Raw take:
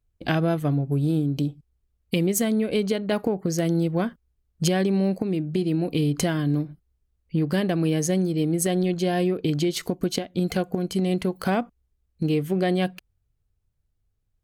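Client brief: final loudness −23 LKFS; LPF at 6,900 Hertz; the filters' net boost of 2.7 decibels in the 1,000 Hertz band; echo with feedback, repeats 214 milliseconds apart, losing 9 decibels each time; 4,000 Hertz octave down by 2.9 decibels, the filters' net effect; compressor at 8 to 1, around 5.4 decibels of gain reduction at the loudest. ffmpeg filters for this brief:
ffmpeg -i in.wav -af "lowpass=6900,equalizer=frequency=1000:width_type=o:gain=4.5,equalizer=frequency=4000:width_type=o:gain=-4,acompressor=threshold=-24dB:ratio=8,aecho=1:1:214|428|642|856:0.355|0.124|0.0435|0.0152,volume=6dB" out.wav

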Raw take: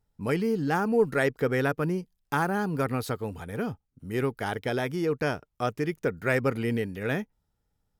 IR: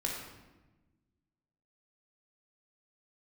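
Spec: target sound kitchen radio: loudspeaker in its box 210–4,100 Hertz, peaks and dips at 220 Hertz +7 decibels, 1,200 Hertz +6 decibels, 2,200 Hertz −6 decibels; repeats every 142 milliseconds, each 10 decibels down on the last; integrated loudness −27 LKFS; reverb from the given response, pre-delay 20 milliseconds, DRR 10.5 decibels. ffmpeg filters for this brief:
-filter_complex "[0:a]aecho=1:1:142|284|426|568:0.316|0.101|0.0324|0.0104,asplit=2[link_01][link_02];[1:a]atrim=start_sample=2205,adelay=20[link_03];[link_02][link_03]afir=irnorm=-1:irlink=0,volume=-14.5dB[link_04];[link_01][link_04]amix=inputs=2:normalize=0,highpass=210,equalizer=frequency=220:width_type=q:width=4:gain=7,equalizer=frequency=1200:width_type=q:width=4:gain=6,equalizer=frequency=2200:width_type=q:width=4:gain=-6,lowpass=frequency=4100:width=0.5412,lowpass=frequency=4100:width=1.3066,volume=0.5dB"

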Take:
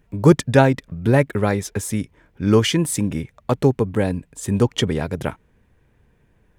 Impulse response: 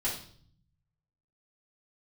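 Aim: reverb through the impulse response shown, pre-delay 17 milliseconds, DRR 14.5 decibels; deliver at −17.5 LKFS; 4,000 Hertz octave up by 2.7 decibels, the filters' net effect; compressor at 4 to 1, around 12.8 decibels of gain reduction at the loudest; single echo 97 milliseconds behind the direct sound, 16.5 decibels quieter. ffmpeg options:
-filter_complex "[0:a]equalizer=frequency=4000:width_type=o:gain=4,acompressor=threshold=-23dB:ratio=4,aecho=1:1:97:0.15,asplit=2[link_01][link_02];[1:a]atrim=start_sample=2205,adelay=17[link_03];[link_02][link_03]afir=irnorm=-1:irlink=0,volume=-20dB[link_04];[link_01][link_04]amix=inputs=2:normalize=0,volume=10dB"

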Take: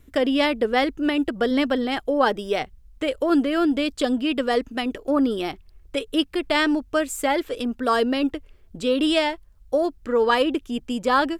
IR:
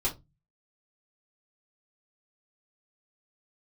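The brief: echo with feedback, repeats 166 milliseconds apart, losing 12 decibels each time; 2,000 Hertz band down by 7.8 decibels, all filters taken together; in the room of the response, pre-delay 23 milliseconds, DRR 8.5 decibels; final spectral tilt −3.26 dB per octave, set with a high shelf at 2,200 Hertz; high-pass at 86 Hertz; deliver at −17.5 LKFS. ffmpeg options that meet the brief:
-filter_complex "[0:a]highpass=86,equalizer=frequency=2000:width_type=o:gain=-6,highshelf=frequency=2200:gain=-7.5,aecho=1:1:166|332|498:0.251|0.0628|0.0157,asplit=2[link_01][link_02];[1:a]atrim=start_sample=2205,adelay=23[link_03];[link_02][link_03]afir=irnorm=-1:irlink=0,volume=-14.5dB[link_04];[link_01][link_04]amix=inputs=2:normalize=0,volume=5.5dB"

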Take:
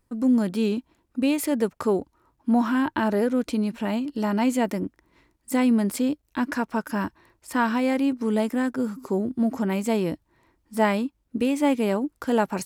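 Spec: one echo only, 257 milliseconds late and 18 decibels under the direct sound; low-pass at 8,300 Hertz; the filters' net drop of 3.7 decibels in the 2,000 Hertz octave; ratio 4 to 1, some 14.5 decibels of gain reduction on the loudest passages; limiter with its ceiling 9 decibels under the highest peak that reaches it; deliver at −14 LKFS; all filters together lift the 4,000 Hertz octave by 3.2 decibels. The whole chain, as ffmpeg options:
ffmpeg -i in.wav -af "lowpass=8300,equalizer=frequency=2000:width_type=o:gain=-6.5,equalizer=frequency=4000:width_type=o:gain=7,acompressor=threshold=-35dB:ratio=4,alimiter=level_in=7dB:limit=-24dB:level=0:latency=1,volume=-7dB,aecho=1:1:257:0.126,volume=26dB" out.wav

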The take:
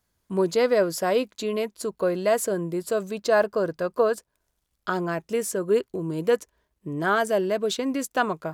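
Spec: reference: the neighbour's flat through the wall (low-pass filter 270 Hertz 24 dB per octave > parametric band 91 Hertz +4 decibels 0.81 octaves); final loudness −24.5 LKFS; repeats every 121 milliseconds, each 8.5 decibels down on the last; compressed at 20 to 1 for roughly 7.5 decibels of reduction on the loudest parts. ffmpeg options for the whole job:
ffmpeg -i in.wav -af "acompressor=threshold=-23dB:ratio=20,lowpass=frequency=270:width=0.5412,lowpass=frequency=270:width=1.3066,equalizer=frequency=91:width_type=o:width=0.81:gain=4,aecho=1:1:121|242|363|484:0.376|0.143|0.0543|0.0206,volume=12.5dB" out.wav

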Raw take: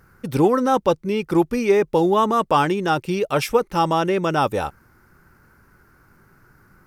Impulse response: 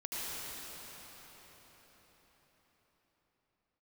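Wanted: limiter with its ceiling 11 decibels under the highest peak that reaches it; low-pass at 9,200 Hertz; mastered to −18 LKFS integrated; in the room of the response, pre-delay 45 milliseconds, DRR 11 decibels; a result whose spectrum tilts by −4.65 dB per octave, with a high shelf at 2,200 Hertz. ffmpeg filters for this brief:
-filter_complex "[0:a]lowpass=9200,highshelf=frequency=2200:gain=4,alimiter=limit=-15dB:level=0:latency=1,asplit=2[link_01][link_02];[1:a]atrim=start_sample=2205,adelay=45[link_03];[link_02][link_03]afir=irnorm=-1:irlink=0,volume=-15.5dB[link_04];[link_01][link_04]amix=inputs=2:normalize=0,volume=6.5dB"

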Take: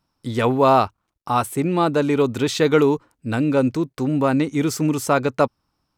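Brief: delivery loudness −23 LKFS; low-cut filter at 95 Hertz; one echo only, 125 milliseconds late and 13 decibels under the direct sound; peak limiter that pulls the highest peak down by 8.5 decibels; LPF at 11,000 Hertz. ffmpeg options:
ffmpeg -i in.wav -af "highpass=95,lowpass=11000,alimiter=limit=-11dB:level=0:latency=1,aecho=1:1:125:0.224,volume=-0.5dB" out.wav

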